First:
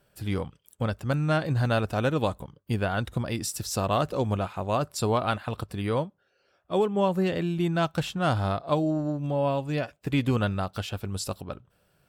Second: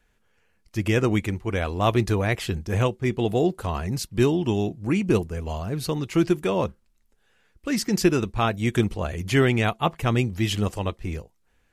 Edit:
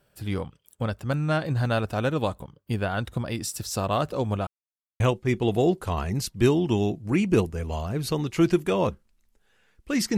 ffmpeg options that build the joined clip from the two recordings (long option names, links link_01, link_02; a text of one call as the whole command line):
ffmpeg -i cue0.wav -i cue1.wav -filter_complex "[0:a]apad=whole_dur=10.17,atrim=end=10.17,asplit=2[link_01][link_02];[link_01]atrim=end=4.47,asetpts=PTS-STARTPTS,afade=type=out:start_time=4.466:duration=0.004:curve=hsin[link_03];[link_02]atrim=start=4.47:end=5,asetpts=PTS-STARTPTS,volume=0[link_04];[1:a]atrim=start=2.77:end=7.94,asetpts=PTS-STARTPTS,afade=type=in:duration=0.004:curve=hsin[link_05];[link_03][link_04][link_05]concat=n=3:v=0:a=1" out.wav